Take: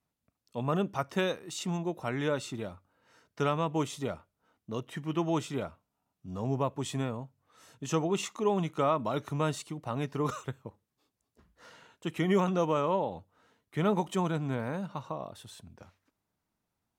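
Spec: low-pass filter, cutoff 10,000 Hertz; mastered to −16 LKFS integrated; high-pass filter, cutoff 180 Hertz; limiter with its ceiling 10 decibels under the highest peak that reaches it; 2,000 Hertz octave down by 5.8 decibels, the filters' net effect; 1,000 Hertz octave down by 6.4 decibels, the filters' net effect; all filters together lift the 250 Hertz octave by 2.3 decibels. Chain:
high-pass filter 180 Hz
low-pass filter 10,000 Hz
parametric band 250 Hz +6 dB
parametric band 1,000 Hz −7 dB
parametric band 2,000 Hz −5.5 dB
level +20 dB
brickwall limiter −5 dBFS

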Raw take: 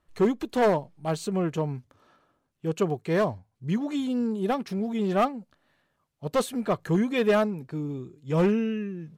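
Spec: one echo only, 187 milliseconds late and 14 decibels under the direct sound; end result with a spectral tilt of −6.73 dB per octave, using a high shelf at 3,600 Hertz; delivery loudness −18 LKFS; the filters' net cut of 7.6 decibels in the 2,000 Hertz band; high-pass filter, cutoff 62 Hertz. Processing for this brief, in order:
high-pass filter 62 Hz
parametric band 2,000 Hz −8.5 dB
high-shelf EQ 3,600 Hz −6 dB
single-tap delay 187 ms −14 dB
level +9.5 dB

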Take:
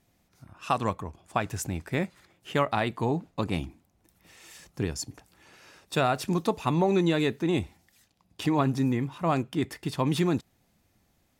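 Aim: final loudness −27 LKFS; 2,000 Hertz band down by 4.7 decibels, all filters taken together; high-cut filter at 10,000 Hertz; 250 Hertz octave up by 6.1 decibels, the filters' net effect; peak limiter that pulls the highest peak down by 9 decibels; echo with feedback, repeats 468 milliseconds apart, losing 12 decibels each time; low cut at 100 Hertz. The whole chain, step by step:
high-pass filter 100 Hz
low-pass filter 10,000 Hz
parametric band 250 Hz +8.5 dB
parametric band 2,000 Hz −6.5 dB
brickwall limiter −17.5 dBFS
repeating echo 468 ms, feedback 25%, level −12 dB
level +2 dB

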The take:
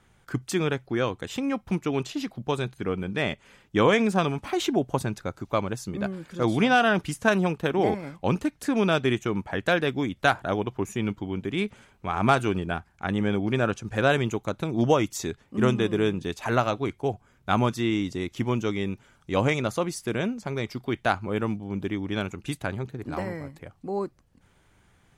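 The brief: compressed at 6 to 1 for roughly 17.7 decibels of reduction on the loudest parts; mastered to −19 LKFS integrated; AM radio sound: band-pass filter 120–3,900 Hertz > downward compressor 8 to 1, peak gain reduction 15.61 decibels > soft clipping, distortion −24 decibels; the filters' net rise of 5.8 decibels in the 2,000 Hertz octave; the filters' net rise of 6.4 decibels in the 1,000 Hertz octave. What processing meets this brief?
parametric band 1,000 Hz +7.5 dB
parametric band 2,000 Hz +5 dB
downward compressor 6 to 1, threshold −31 dBFS
band-pass filter 120–3,900 Hz
downward compressor 8 to 1, threshold −42 dBFS
soft clipping −29 dBFS
level +28.5 dB

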